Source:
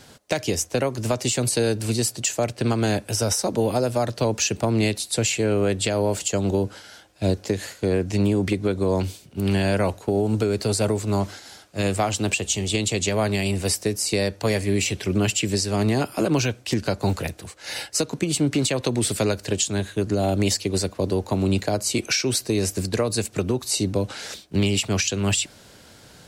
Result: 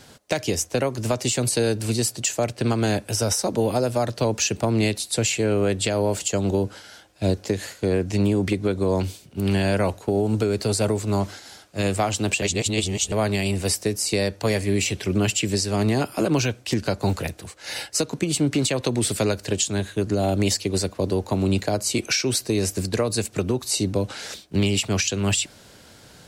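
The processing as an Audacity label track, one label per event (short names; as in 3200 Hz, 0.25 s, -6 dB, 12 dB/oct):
12.420000	13.120000	reverse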